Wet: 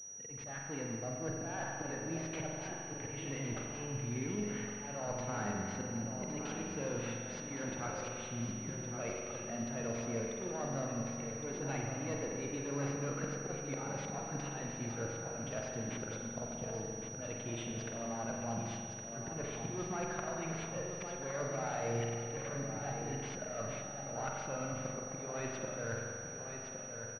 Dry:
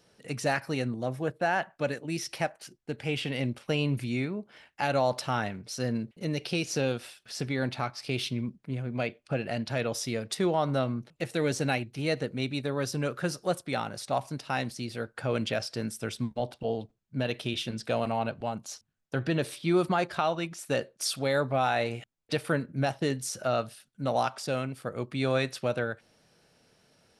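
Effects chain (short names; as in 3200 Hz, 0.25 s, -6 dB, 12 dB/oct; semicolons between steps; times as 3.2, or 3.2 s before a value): one diode to ground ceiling -26.5 dBFS; AGC gain up to 10 dB; auto swell 0.303 s; reverse; compressor 5:1, threshold -37 dBFS, peak gain reduction 19 dB; reverse; feedback echo 1.113 s, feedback 44%, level -7.5 dB; reverb RT60 2.3 s, pre-delay 43 ms, DRR -0.5 dB; pulse-width modulation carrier 5800 Hz; gain -4 dB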